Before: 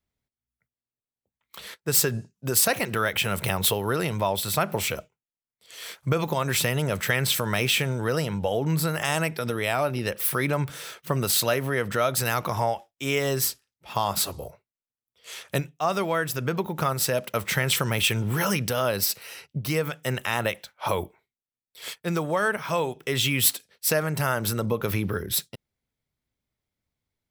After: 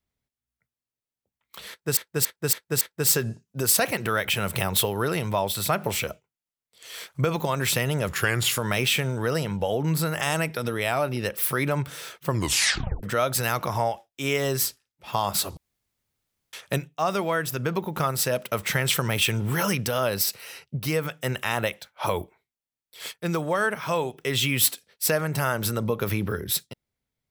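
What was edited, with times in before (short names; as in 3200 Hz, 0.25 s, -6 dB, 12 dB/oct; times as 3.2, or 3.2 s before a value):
1.69–1.97 loop, 5 plays
6.96–7.4 speed 88%
11.09 tape stop 0.76 s
14.39–15.35 room tone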